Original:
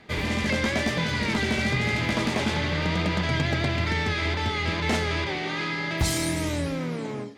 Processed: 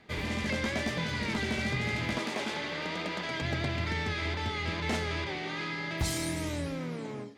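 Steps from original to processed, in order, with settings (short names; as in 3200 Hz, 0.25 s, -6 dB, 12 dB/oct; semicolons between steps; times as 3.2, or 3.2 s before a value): 2.18–3.42 HPF 270 Hz 12 dB/oct; gain -6.5 dB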